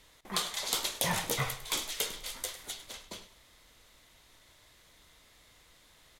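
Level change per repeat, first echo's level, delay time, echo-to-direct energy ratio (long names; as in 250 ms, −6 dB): −12.5 dB, −15.0 dB, 102 ms, −14.5 dB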